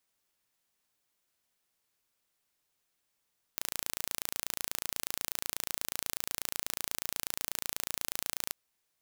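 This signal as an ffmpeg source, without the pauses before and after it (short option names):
-f lavfi -i "aevalsrc='0.501*eq(mod(n,1564),0)':d=4.96:s=44100"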